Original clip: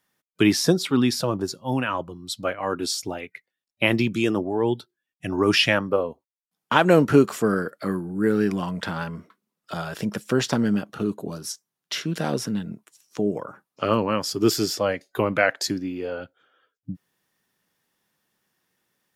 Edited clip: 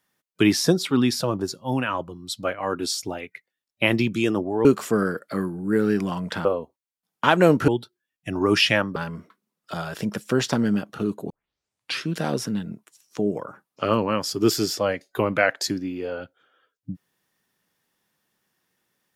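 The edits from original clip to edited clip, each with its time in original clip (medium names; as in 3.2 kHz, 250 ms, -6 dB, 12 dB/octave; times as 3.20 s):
4.65–5.93 s: swap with 7.16–8.96 s
11.30 s: tape start 0.76 s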